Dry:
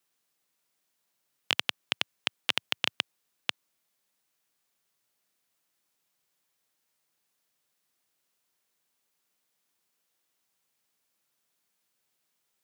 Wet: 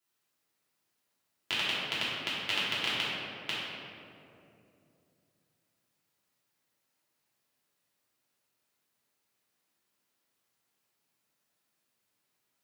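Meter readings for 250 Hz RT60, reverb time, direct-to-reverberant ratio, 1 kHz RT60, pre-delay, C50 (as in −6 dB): 3.4 s, 2.7 s, −10.0 dB, 2.3 s, 3 ms, −2.5 dB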